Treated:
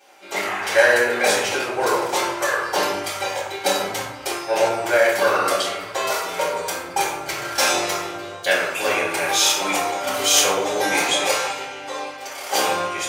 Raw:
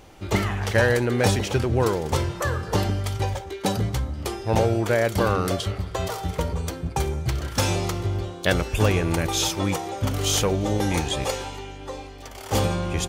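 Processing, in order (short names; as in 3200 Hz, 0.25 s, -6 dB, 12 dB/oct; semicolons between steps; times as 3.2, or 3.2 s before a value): AGC gain up to 8 dB; HPF 740 Hz 12 dB/oct; reverb RT60 0.80 s, pre-delay 3 ms, DRR -9.5 dB; gain -8 dB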